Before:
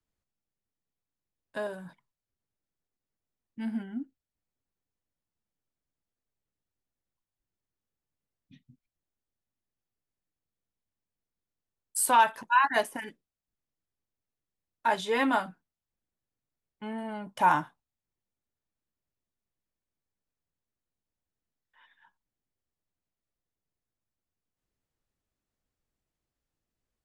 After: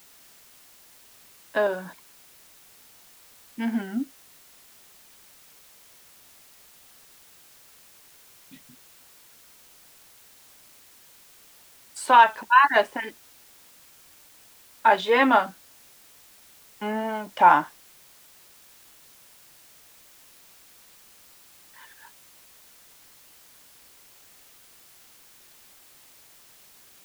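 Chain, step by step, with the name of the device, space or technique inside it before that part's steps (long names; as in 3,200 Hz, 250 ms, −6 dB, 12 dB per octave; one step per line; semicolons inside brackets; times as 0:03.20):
dictaphone (band-pass filter 280–3,700 Hz; automatic gain control gain up to 14 dB; tape wow and flutter; white noise bed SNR 24 dB)
level −2.5 dB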